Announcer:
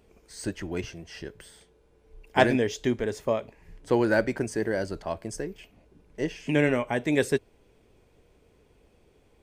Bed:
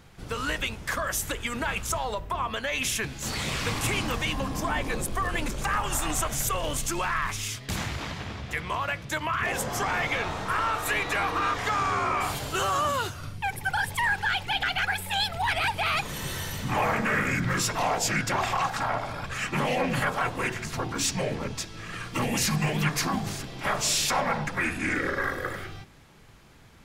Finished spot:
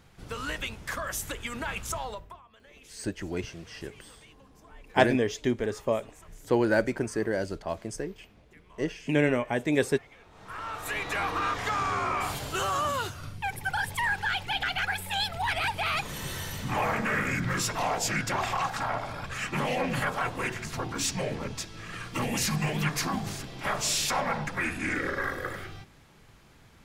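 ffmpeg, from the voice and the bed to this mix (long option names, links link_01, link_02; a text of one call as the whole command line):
ffmpeg -i stem1.wav -i stem2.wav -filter_complex "[0:a]adelay=2600,volume=-1dB[link_01];[1:a]volume=19.5dB,afade=type=out:start_time=2.02:duration=0.39:silence=0.0794328,afade=type=in:start_time=10.3:duration=0.95:silence=0.0630957[link_02];[link_01][link_02]amix=inputs=2:normalize=0" out.wav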